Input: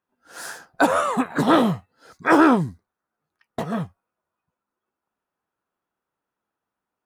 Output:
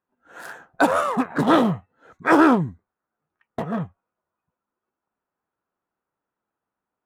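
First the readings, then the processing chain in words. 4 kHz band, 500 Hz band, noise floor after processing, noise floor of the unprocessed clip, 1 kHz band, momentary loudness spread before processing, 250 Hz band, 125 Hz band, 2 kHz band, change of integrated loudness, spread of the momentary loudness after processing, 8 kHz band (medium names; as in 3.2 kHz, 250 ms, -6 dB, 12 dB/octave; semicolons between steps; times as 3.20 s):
-2.0 dB, 0.0 dB, under -85 dBFS, under -85 dBFS, 0.0 dB, 20 LU, 0.0 dB, 0.0 dB, -0.5 dB, 0.0 dB, 22 LU, no reading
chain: local Wiener filter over 9 samples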